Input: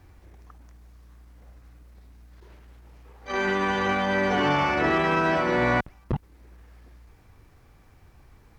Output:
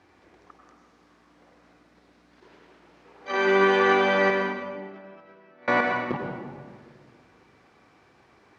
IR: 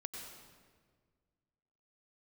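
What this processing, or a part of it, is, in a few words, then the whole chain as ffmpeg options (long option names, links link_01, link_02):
supermarket ceiling speaker: -filter_complex "[0:a]asettb=1/sr,asplit=3[link_01][link_02][link_03];[link_01]atrim=end=4.304[link_04];[link_02]atrim=start=4.3:end=5.68,asetpts=PTS-STARTPTS,afade=type=in:duration=0.004:curve=qsin,afade=type=out:start_time=1.376:duration=0.004:curve=qsin,agate=range=-40dB:threshold=-17dB:ratio=16:detection=peak[link_05];[link_03]atrim=start=5.676[link_06];[link_04][link_05]acrossfade=duration=0.004:curve1=hsin:curve2=qsin[link_07];[link_07][link_06]acrossfade=duration=0.004:curve1=qsin:curve2=hsin,highpass=260,lowpass=5400[link_08];[1:a]atrim=start_sample=2205[link_09];[link_08][link_09]afir=irnorm=-1:irlink=0,volume=6dB"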